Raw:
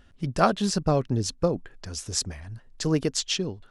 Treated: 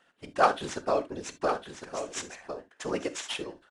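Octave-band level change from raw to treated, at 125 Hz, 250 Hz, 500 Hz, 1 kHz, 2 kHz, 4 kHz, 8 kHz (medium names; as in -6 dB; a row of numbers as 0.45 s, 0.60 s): -19.5 dB, -11.0 dB, -2.5 dB, +0.5 dB, +1.0 dB, -8.0 dB, -9.0 dB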